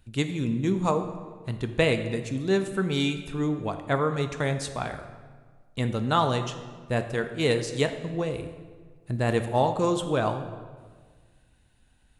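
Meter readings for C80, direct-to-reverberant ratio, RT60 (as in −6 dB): 11.0 dB, 7.0 dB, 1.6 s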